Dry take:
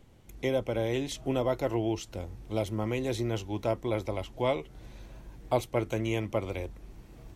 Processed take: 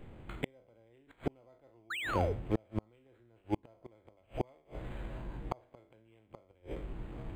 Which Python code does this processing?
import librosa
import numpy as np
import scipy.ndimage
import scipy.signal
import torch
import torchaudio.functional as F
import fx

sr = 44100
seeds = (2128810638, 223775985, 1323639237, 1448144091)

y = fx.spec_trails(x, sr, decay_s=0.52)
y = fx.hum_notches(y, sr, base_hz=50, count=5)
y = fx.gate_flip(y, sr, shuts_db=-23.0, range_db=-39)
y = fx.spec_paint(y, sr, seeds[0], shape='fall', start_s=1.9, length_s=0.43, low_hz=390.0, high_hz=4400.0, level_db=-40.0)
y = np.interp(np.arange(len(y)), np.arange(len(y))[::8], y[::8])
y = y * 10.0 ** (5.5 / 20.0)